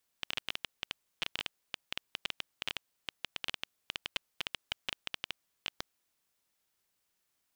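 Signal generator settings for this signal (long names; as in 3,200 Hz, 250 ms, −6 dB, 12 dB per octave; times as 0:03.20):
Geiger counter clicks 11 per second −16 dBFS 5.71 s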